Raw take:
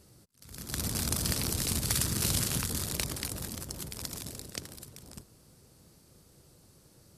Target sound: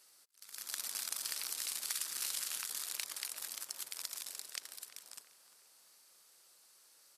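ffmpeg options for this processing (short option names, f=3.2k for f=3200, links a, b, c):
-filter_complex "[0:a]highpass=1.2k,acompressor=threshold=-38dB:ratio=2.5,asplit=2[a][b];[b]adelay=347,lowpass=f=2.2k:p=1,volume=-12dB,asplit=2[c][d];[d]adelay=347,lowpass=f=2.2k:p=1,volume=0.54,asplit=2[e][f];[f]adelay=347,lowpass=f=2.2k:p=1,volume=0.54,asplit=2[g][h];[h]adelay=347,lowpass=f=2.2k:p=1,volume=0.54,asplit=2[i][j];[j]adelay=347,lowpass=f=2.2k:p=1,volume=0.54,asplit=2[k][l];[l]adelay=347,lowpass=f=2.2k:p=1,volume=0.54[m];[c][e][g][i][k][m]amix=inputs=6:normalize=0[n];[a][n]amix=inputs=2:normalize=0"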